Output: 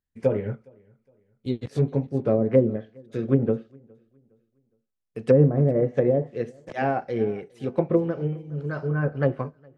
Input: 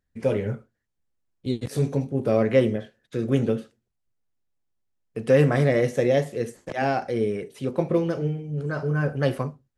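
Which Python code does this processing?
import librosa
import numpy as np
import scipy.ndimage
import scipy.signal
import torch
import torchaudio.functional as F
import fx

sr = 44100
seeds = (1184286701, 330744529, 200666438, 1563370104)

y = fx.env_lowpass_down(x, sr, base_hz=500.0, full_db=-15.5)
y = fx.echo_feedback(y, sr, ms=413, feedback_pct=37, wet_db=-19.5)
y = fx.upward_expand(y, sr, threshold_db=-42.0, expansion=1.5)
y = y * librosa.db_to_amplitude(3.0)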